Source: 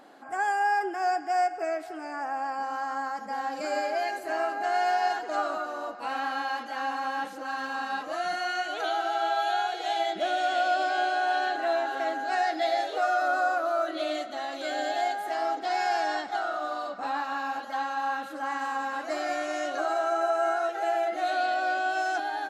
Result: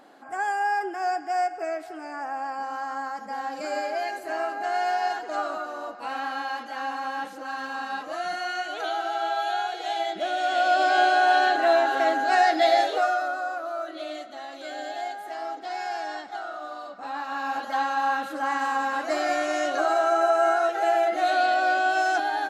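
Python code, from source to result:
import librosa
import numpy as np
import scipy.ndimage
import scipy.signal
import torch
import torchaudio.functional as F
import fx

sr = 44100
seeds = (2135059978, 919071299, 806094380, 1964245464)

y = fx.gain(x, sr, db=fx.line((10.32, 0.0), (10.96, 7.0), (12.86, 7.0), (13.37, -4.5), (17.0, -4.5), (17.64, 5.0)))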